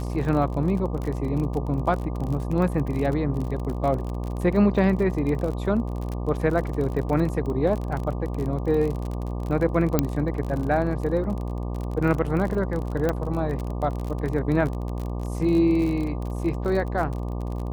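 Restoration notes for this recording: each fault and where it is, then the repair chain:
buzz 60 Hz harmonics 20 -29 dBFS
crackle 39 per s -29 dBFS
9.99 s: pop -6 dBFS
13.09 s: pop -12 dBFS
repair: de-click; de-hum 60 Hz, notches 20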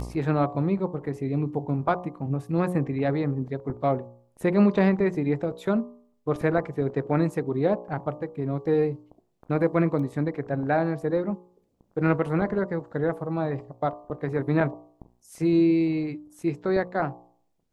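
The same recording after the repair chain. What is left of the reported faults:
9.99 s: pop

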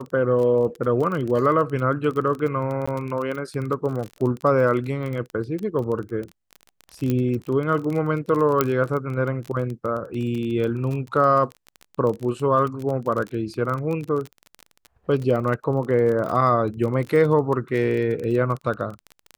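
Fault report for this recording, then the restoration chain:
crackle 24 per s -27 dBFS
2.86–2.88 s: dropout 15 ms
7.10 s: pop -12 dBFS
8.61 s: pop -4 dBFS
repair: de-click; interpolate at 2.86 s, 15 ms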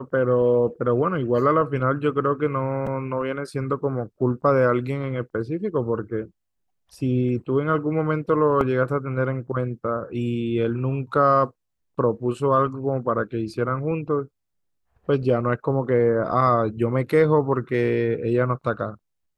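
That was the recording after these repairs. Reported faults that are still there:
8.61 s: pop

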